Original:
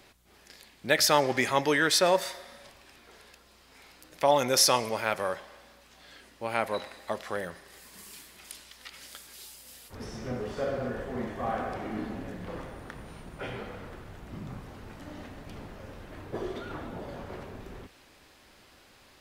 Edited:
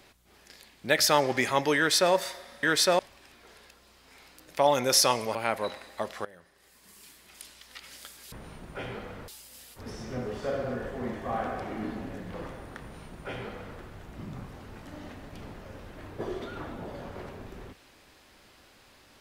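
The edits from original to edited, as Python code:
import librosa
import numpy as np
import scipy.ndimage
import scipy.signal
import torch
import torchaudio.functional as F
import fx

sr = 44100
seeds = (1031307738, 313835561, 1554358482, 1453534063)

y = fx.edit(x, sr, fx.duplicate(start_s=1.77, length_s=0.36, to_s=2.63),
    fx.cut(start_s=4.99, length_s=1.46),
    fx.fade_in_from(start_s=7.35, length_s=1.52, floor_db=-19.5),
    fx.duplicate(start_s=12.96, length_s=0.96, to_s=9.42), tone=tone)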